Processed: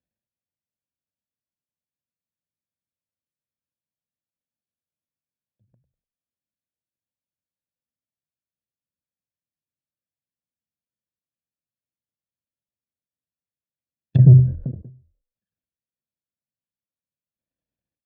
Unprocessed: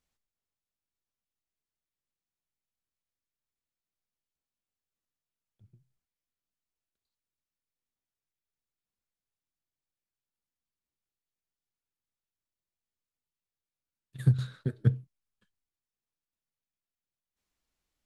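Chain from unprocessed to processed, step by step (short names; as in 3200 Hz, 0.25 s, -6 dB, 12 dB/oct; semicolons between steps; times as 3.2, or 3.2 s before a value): switching dead time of 0.11 ms; sample leveller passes 5; in parallel at -2 dB: negative-ratio compressor -20 dBFS, ratio -1; on the sum: HPF 96 Hz 12 dB/oct; air absorption 170 m; comb 1.2 ms, depth 76%; frequency-shifting echo 98 ms, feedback 33%, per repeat -46 Hz, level -20 dB; treble ducked by the level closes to 340 Hz, closed at -14.5 dBFS; resonant low shelf 650 Hz +8.5 dB, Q 3; ending taper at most 120 dB/s; gain -5.5 dB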